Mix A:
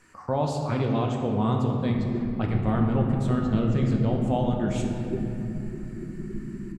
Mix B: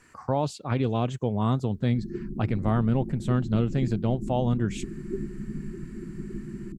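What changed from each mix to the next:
speech +5.5 dB
reverb: off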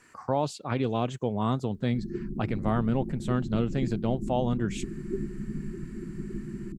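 speech: add low-shelf EQ 110 Hz −10.5 dB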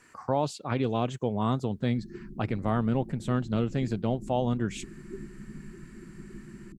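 background −8.5 dB

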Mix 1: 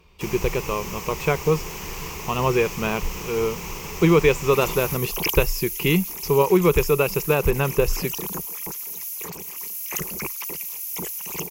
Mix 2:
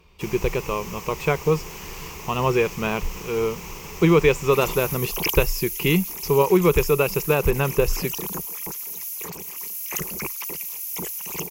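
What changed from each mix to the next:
first sound −3.5 dB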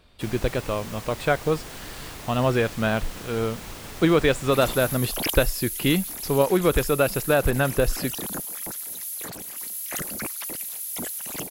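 master: remove EQ curve with evenly spaced ripples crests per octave 0.77, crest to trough 12 dB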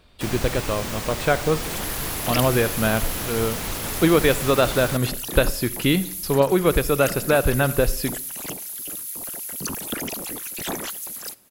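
first sound +8.0 dB
second sound: entry −2.90 s
reverb: on, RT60 0.60 s

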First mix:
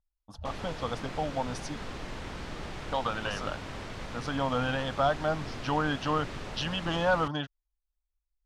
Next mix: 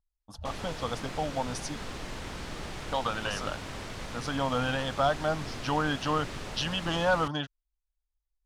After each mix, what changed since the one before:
master: remove low-pass filter 4,000 Hz 6 dB per octave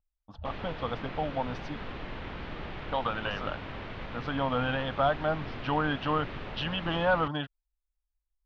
master: add low-pass filter 3,300 Hz 24 dB per octave

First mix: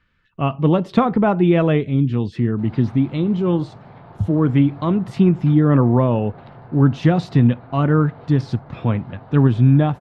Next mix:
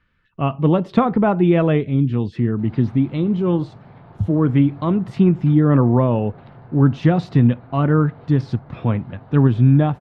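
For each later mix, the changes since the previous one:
background: add parametric band 790 Hz −4 dB 2.2 octaves
master: add high-shelf EQ 4,500 Hz −7.5 dB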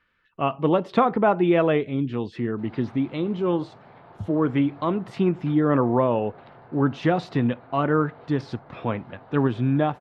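master: add bass and treble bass −13 dB, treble −1 dB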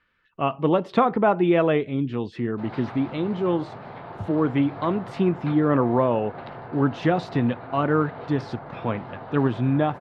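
background +10.0 dB

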